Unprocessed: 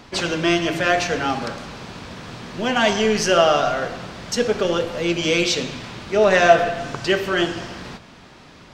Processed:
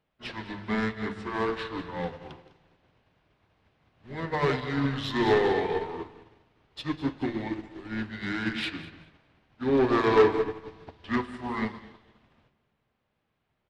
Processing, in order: notches 60/120/180/240/300/360/420/480/540 Hz; soft clip -13 dBFS, distortion -12 dB; wide varispeed 0.638×; feedback echo 0.203 s, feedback 40%, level -11 dB; on a send at -18 dB: reverb RT60 3.0 s, pre-delay 6 ms; on the sum: upward expander 2.5:1, over -36 dBFS

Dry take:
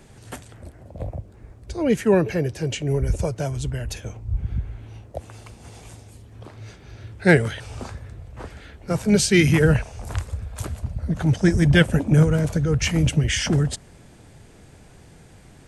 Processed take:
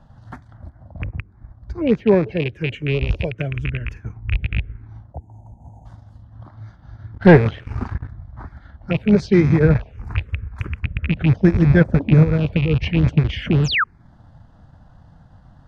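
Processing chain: rattling part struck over -23 dBFS, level -13 dBFS; 5.14–5.86 spectral gain 980–6200 Hz -28 dB; transient shaper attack +2 dB, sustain -5 dB; envelope phaser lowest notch 380 Hz, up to 2900 Hz, full sweep at -13 dBFS; 2.31–3.41 tone controls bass -2 dB, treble +5 dB; 7.14–8.09 sample leveller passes 2; 13.64–13.84 painted sound fall 1100–8000 Hz -17 dBFS; air absorption 300 m; gain +3 dB

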